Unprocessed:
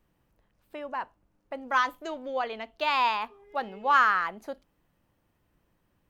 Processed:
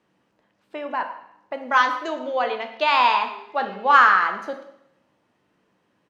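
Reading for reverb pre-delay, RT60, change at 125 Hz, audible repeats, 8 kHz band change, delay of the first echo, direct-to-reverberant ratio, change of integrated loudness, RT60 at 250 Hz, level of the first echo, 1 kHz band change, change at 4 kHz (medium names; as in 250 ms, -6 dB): 5 ms, 0.75 s, no reading, 1, no reading, 114 ms, 5.5 dB, +7.5 dB, 0.75 s, -18.0 dB, +7.5 dB, +7.0 dB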